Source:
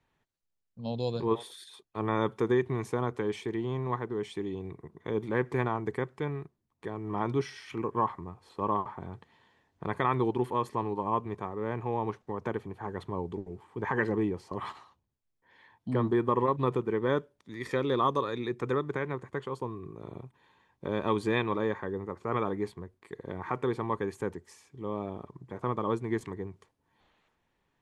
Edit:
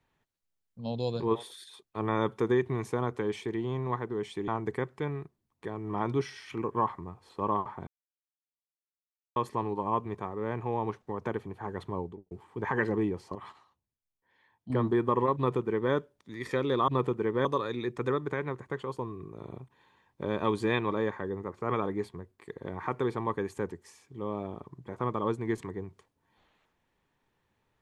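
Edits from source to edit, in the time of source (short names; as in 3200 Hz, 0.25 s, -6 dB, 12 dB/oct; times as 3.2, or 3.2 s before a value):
4.48–5.68 cut
9.07–10.56 mute
13.15–13.51 studio fade out
14.55–15.9 gain -8.5 dB
16.56–17.13 copy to 18.08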